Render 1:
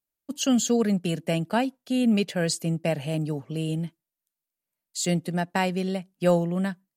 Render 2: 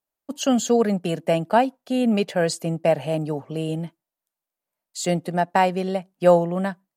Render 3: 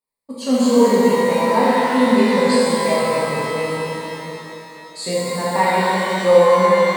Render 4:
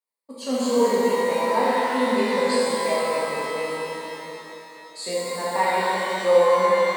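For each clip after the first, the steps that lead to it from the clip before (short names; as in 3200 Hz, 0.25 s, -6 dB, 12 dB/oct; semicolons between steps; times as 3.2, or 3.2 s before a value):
bell 770 Hz +11 dB 2 oct; gain -1.5 dB
ripple EQ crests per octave 0.94, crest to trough 12 dB; shimmer reverb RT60 3.1 s, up +12 st, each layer -8 dB, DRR -9.5 dB; gain -6.5 dB
HPF 300 Hz 12 dB/oct; gain -4.5 dB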